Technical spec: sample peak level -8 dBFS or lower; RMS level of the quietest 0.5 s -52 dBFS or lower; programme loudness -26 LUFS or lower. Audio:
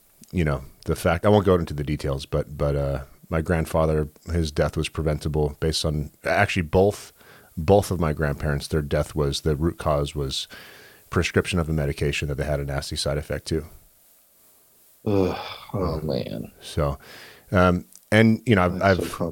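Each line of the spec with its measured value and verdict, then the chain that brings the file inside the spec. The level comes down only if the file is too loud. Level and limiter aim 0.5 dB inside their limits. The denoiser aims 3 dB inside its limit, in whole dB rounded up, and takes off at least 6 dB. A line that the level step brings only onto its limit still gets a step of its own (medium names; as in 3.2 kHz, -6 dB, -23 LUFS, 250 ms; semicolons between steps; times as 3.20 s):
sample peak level -4.0 dBFS: fail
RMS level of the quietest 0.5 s -57 dBFS: pass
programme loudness -24.0 LUFS: fail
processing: trim -2.5 dB; peak limiter -8.5 dBFS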